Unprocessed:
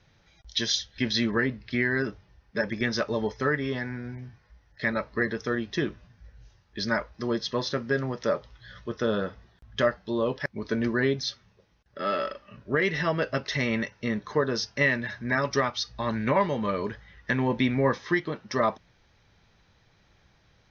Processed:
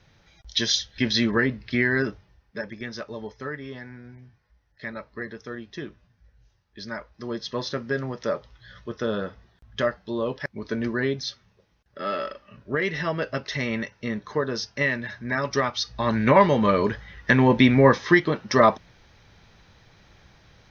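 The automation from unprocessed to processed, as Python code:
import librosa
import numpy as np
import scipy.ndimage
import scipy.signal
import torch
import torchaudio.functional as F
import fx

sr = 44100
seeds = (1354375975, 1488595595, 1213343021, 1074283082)

y = fx.gain(x, sr, db=fx.line((2.05, 3.5), (2.77, -7.5), (6.92, -7.5), (7.61, -0.5), (15.34, -0.5), (16.46, 8.0)))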